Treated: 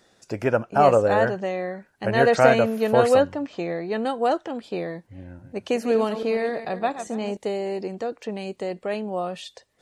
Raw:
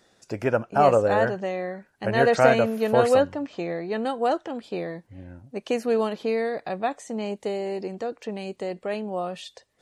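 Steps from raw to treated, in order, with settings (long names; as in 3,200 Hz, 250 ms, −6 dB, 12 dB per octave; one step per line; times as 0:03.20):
0:05.25–0:07.37: feedback delay that plays each chunk backwards 140 ms, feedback 41%, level −10 dB
level +1.5 dB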